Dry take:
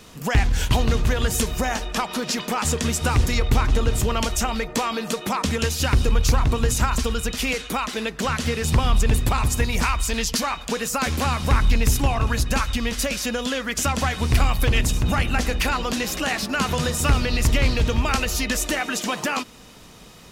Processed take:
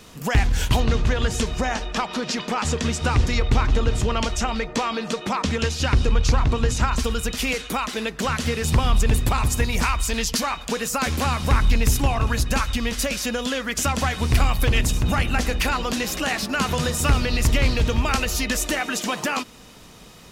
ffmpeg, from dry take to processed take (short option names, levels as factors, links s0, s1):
-filter_complex "[0:a]asettb=1/sr,asplit=3[s0][s1][s2];[s0]atrim=end=0.804[s3];[s1]atrim=start=0.8:end=6.98,asetpts=PTS-STARTPTS,afade=t=in:d=0.004:c=qsin,afade=t=out:st=6.176:d=0.004:c=qsin,lowpass=6300[s4];[s2]atrim=start=6.976[s5];[s3][s4]acrossfade=d=0.004:c1=hsin:c2=qsin[s6];[s6][s5]acrossfade=d=0.004:c1=qsin:c2=hsin"